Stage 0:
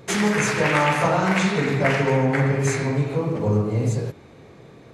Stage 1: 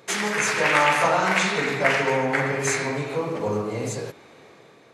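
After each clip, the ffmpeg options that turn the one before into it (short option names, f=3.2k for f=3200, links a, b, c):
-af "highpass=f=690:p=1,dynaudnorm=f=120:g=9:m=4dB"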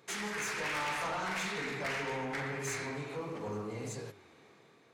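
-af "equalizer=f=580:w=2.9:g=-5,flanger=delay=6.4:depth=8.8:regen=88:speed=0.77:shape=triangular,asoftclip=type=tanh:threshold=-26dB,volume=-5.5dB"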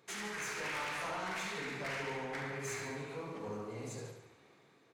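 -af "aecho=1:1:71|142|213|284|355|426:0.447|0.237|0.125|0.0665|0.0352|0.0187,volume=-4.5dB"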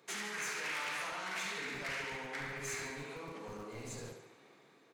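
-filter_complex "[0:a]acrossover=split=130|1300[a][b][c];[a]acrusher=bits=6:dc=4:mix=0:aa=0.000001[d];[b]alimiter=level_in=18.5dB:limit=-24dB:level=0:latency=1:release=87,volume=-18.5dB[e];[d][e][c]amix=inputs=3:normalize=0,volume=2dB"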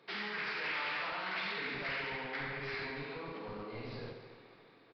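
-af "asoftclip=type=hard:threshold=-33dB,aecho=1:1:284|568|852:0.15|0.0569|0.0216,aresample=11025,aresample=44100,volume=2dB"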